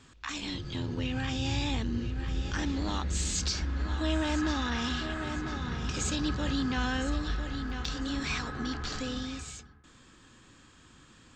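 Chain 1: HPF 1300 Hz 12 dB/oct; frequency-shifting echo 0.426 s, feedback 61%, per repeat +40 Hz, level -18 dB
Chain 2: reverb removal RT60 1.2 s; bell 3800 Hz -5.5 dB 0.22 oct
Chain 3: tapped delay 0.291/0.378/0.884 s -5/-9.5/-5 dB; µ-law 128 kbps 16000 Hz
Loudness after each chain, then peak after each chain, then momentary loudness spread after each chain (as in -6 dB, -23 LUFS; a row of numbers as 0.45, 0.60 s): -37.5, -35.0, -30.5 LUFS; -15.5, -18.5, -15.0 dBFS; 12, 6, 9 LU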